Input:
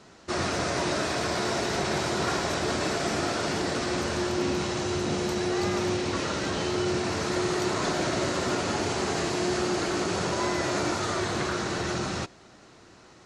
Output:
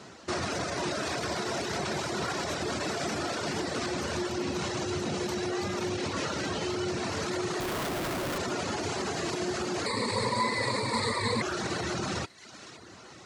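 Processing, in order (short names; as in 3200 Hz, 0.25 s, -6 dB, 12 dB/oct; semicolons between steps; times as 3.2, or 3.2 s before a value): limiter -26.5 dBFS, peak gain reduction 11 dB; 9.86–11.42 ripple EQ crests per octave 0.96, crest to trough 18 dB; thin delay 0.513 s, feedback 40%, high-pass 1700 Hz, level -12 dB; reverb removal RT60 0.74 s; HPF 67 Hz 24 dB/oct; 7.6–8.38 Schmitt trigger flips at -41.5 dBFS; gain +5 dB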